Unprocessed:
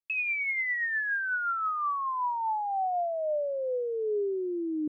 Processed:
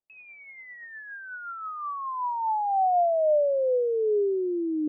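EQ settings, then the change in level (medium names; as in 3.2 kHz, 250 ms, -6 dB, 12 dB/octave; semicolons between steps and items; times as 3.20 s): dynamic bell 150 Hz, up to -6 dB, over -52 dBFS, Q 1.4; resonant low-pass 690 Hz, resonance Q 1.7; peaking EQ 63 Hz -11.5 dB 0.37 oct; +3.0 dB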